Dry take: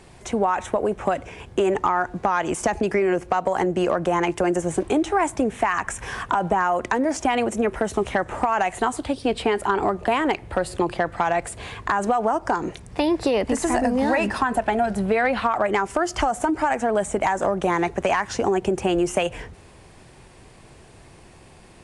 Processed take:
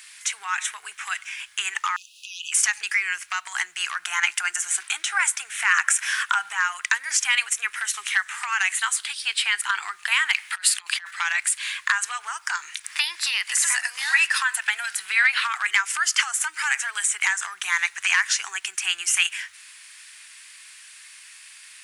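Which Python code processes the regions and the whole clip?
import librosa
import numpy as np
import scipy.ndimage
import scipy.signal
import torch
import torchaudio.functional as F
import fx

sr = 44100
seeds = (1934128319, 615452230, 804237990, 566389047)

y = fx.chain(x, sr, fx.brickwall_highpass(low_hz=2500.0),
    fx.peak_eq(hz=8200.0, db=-10.5, octaves=0.55),
    fx.band_squash(depth_pct=40), at=(1.96, 2.52))
y = fx.chain(y, sr, fx.highpass(hz=100.0, slope=6),
    fx.small_body(hz=(790.0, 1400.0), ring_ms=20, db=7), at=(4.02, 6.49))
y = fx.chain(y, sr, fx.highpass(hz=470.0, slope=12),
    fx.over_compress(threshold_db=-30.0, ratio=-0.5), at=(10.35, 11.11))
y = fx.chain(y, sr, fx.highpass(hz=220.0, slope=12),
    fx.band_squash(depth_pct=40), at=(12.84, 17.27))
y = scipy.signal.sosfilt(scipy.signal.cheby2(4, 50, 620.0, 'highpass', fs=sr, output='sos'), y)
y = fx.high_shelf(y, sr, hz=9500.0, db=9.0)
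y = y * 10.0 ** (9.0 / 20.0)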